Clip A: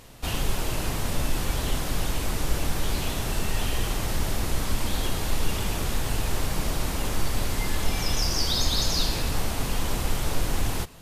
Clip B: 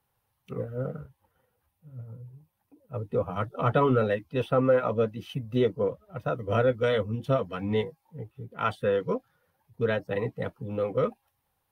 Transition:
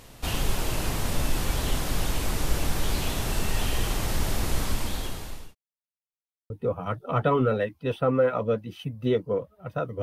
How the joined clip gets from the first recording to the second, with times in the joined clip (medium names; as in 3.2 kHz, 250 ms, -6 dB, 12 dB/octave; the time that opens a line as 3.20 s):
clip A
4.61–5.55 s: fade out linear
5.55–6.50 s: mute
6.50 s: go over to clip B from 3.00 s